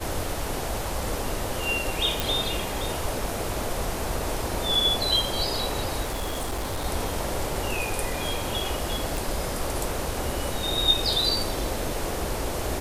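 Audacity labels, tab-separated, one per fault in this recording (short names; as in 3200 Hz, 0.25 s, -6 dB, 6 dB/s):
2.200000	2.200000	pop
6.020000	6.860000	clipped -25.5 dBFS
9.170000	9.170000	pop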